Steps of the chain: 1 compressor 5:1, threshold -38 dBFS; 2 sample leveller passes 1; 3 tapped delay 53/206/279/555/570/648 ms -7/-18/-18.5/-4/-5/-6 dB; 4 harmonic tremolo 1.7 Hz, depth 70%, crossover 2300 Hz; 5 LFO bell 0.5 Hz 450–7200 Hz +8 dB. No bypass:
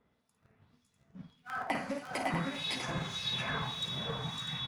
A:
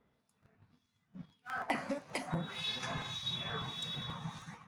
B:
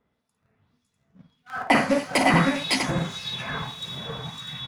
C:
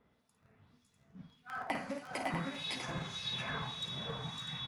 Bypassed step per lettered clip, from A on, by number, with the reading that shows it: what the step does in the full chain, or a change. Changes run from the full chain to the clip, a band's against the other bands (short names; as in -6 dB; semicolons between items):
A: 3, loudness change -3.0 LU; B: 1, mean gain reduction 6.0 dB; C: 2, loudness change -3.5 LU